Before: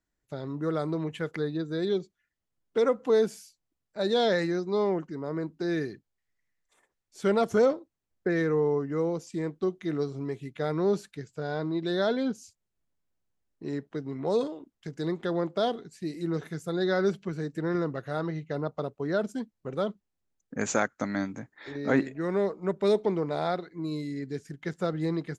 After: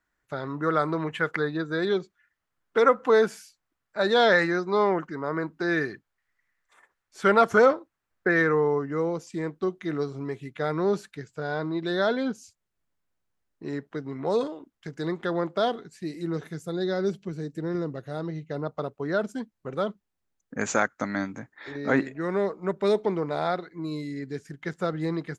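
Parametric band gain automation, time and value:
parametric band 1,400 Hz 1.8 octaves
0:08.43 +13.5 dB
0:08.93 +6 dB
0:15.92 +6 dB
0:17.00 −6 dB
0:18.29 −6 dB
0:18.82 +4.5 dB

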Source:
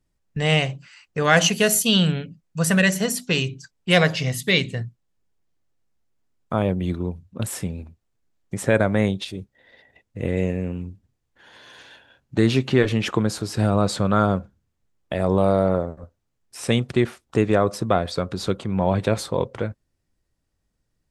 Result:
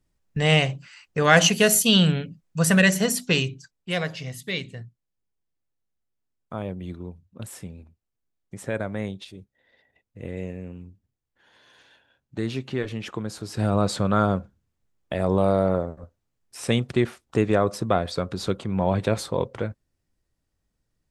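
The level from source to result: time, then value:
0:03.33 +0.5 dB
0:03.95 −10 dB
0:13.23 −10 dB
0:13.74 −2 dB

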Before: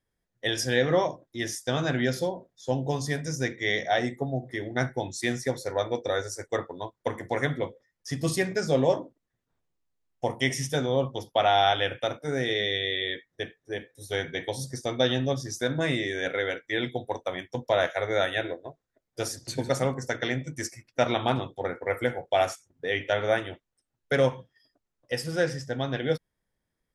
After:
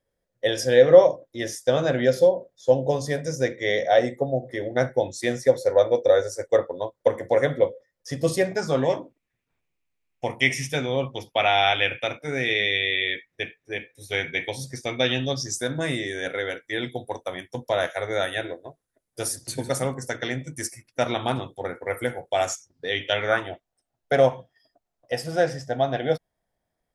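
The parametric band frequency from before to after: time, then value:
parametric band +14 dB 0.5 octaves
0:08.43 540 Hz
0:08.97 2,400 Hz
0:15.14 2,400 Hz
0:15.63 10,000 Hz
0:22.25 10,000 Hz
0:23.13 3,000 Hz
0:23.50 690 Hz

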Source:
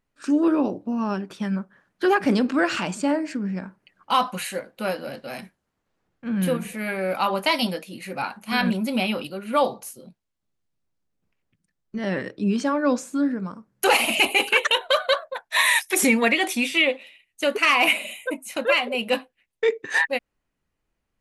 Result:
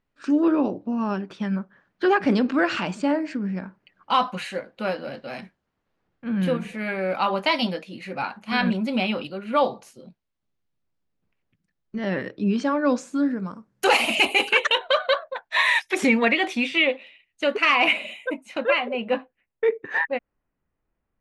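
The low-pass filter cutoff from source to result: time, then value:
0:12.57 4,600 Hz
0:13.29 7,500 Hz
0:14.43 7,500 Hz
0:14.92 3,900 Hz
0:18.38 3,900 Hz
0:19.09 1,800 Hz

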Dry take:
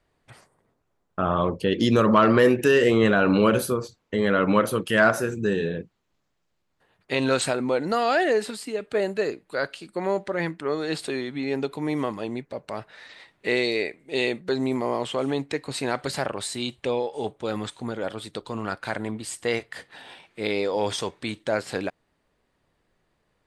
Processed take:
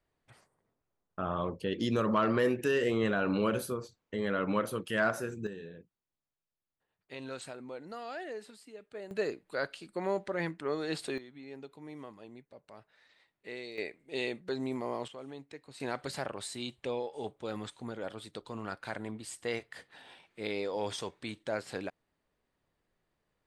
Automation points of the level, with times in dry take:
−10.5 dB
from 0:05.47 −19.5 dB
from 0:09.11 −7 dB
from 0:11.18 −19.5 dB
from 0:13.78 −10 dB
from 0:15.08 −19.5 dB
from 0:15.80 −9.5 dB

